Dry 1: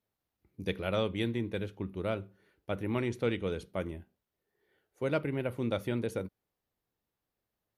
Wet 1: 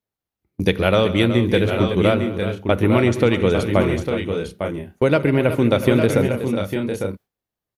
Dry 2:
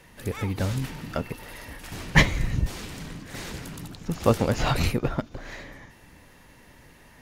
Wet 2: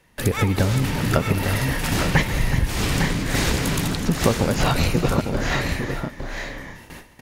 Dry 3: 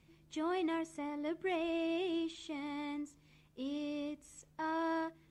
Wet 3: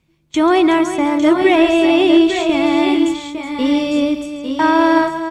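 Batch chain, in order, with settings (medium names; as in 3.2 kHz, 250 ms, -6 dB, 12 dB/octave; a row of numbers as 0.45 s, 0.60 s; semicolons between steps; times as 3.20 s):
gate with hold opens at -40 dBFS; compression 10:1, threshold -31 dBFS; multi-tap echo 137/214/371/853/883 ms -15.5/-18.5/-11.5/-7.5/-10.5 dB; peak normalisation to -1.5 dBFS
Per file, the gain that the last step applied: +19.0 dB, +14.5 dB, +23.5 dB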